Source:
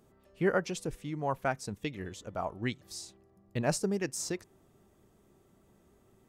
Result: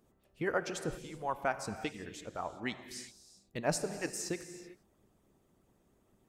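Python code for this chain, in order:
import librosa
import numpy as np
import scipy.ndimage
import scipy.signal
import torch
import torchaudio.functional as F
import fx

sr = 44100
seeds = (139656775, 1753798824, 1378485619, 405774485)

y = fx.hpss(x, sr, part='harmonic', gain_db=-13)
y = fx.rev_gated(y, sr, seeds[0], gate_ms=410, shape='flat', drr_db=9.5)
y = y * librosa.db_to_amplitude(-1.0)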